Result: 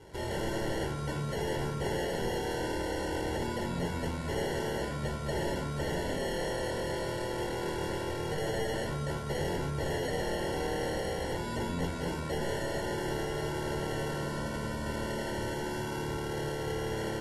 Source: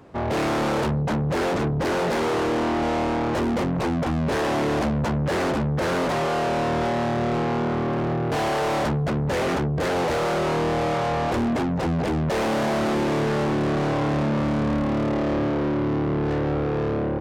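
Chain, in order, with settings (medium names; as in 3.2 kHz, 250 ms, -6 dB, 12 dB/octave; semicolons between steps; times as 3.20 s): bass shelf 65 Hz +4.5 dB; peak limiter -27 dBFS, peak gain reduction 11 dB; sample-and-hold 36×; reverberation RT60 0.80 s, pre-delay 5 ms, DRR 4.5 dB; trim -7 dB; AAC 32 kbps 32 kHz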